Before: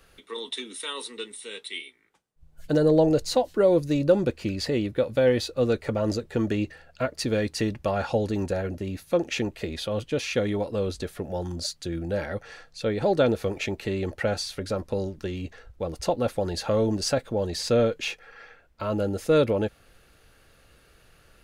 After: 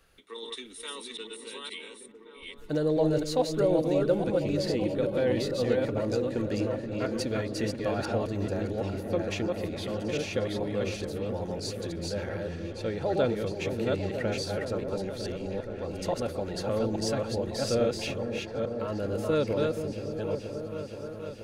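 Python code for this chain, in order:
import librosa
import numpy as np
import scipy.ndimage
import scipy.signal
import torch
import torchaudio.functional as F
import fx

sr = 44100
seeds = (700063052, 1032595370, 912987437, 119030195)

y = fx.reverse_delay(x, sr, ms=424, wet_db=-2.0)
y = fx.echo_opening(y, sr, ms=476, hz=400, octaves=1, feedback_pct=70, wet_db=-6)
y = y * librosa.db_to_amplitude(-6.5)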